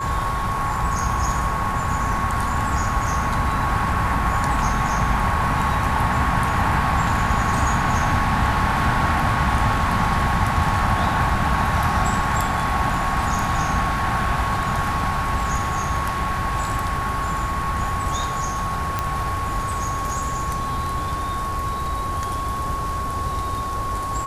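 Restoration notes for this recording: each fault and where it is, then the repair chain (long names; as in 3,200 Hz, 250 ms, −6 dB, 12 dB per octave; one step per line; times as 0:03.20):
whistle 1,100 Hz −25 dBFS
0:18.99: click −8 dBFS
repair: click removal
notch filter 1,100 Hz, Q 30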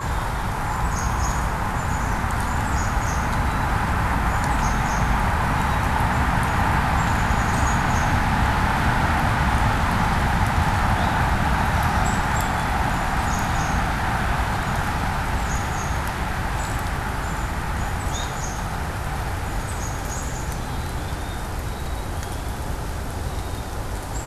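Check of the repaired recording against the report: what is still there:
none of them is left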